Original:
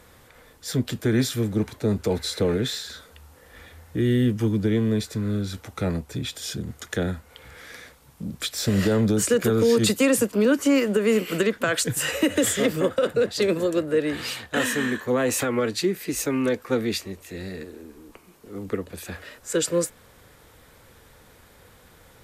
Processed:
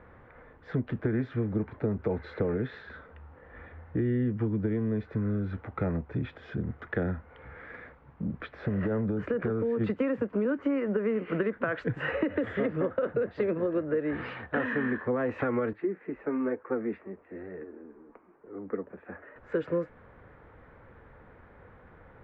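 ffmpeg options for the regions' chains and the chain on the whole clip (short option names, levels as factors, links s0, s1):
-filter_complex "[0:a]asettb=1/sr,asplit=3[s0][s1][s2];[s0]atrim=end=8.394[s3];[s1]atrim=start=8.39:end=9.81,asetpts=PTS-STARTPTS,afade=t=in:d=0.004:c=qsin,afade=t=out:st=1.416:d=0.004:c=qsin,highshelf=f=5000:g=-10,acompressor=threshold=0.0708:ratio=2.5:attack=3.2:release=140:knee=1:detection=peak[s4];[s2]atrim=start=9.806[s5];[s3][s4]acrossfade=d=0.004:c1=hsin:c2=qsin[s6];[s6][s5]acrossfade=d=0.004:c1=qsin:c2=hsin,asettb=1/sr,asplit=3[s7][s8][s9];[s7]atrim=end=15.734[s10];[s8]atrim=start=15.73:end=19.36,asetpts=PTS-STARTPTS,afade=t=in:d=0.004:c=qsin,afade=t=out:st=3.626:d=0.004:c=qsin,acrossover=split=190 2300:gain=0.2 1 0.0631[s11][s12][s13];[s11][s12][s13]amix=inputs=3:normalize=0,flanger=delay=1.9:depth=3.4:regen=-47:speed=1.1:shape=triangular[s14];[s9]atrim=start=19.356[s15];[s10][s14]acrossfade=d=0.004:c1=hsin:c2=qsin[s16];[s16][s15]acrossfade=d=0.004:c1=qsin:c2=hsin,lowpass=f=1900:w=0.5412,lowpass=f=1900:w=1.3066,acompressor=threshold=0.0562:ratio=6"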